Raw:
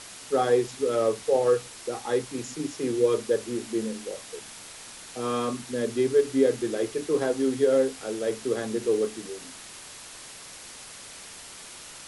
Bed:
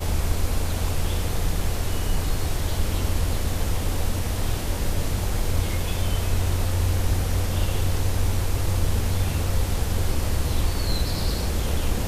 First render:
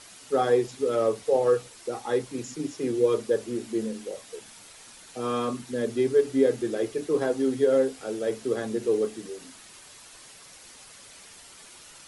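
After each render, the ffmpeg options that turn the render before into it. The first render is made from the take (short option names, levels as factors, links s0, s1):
-af "afftdn=nr=7:nf=-44"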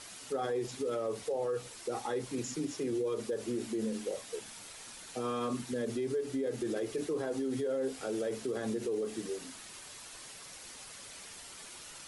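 -af "acompressor=threshold=0.0708:ratio=6,alimiter=level_in=1.33:limit=0.0631:level=0:latency=1:release=49,volume=0.75"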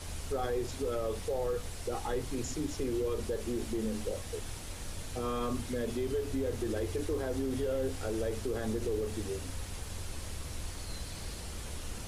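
-filter_complex "[1:a]volume=0.133[s0];[0:a][s0]amix=inputs=2:normalize=0"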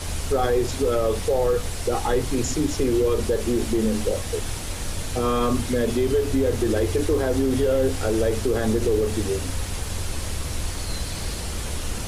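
-af "volume=3.98"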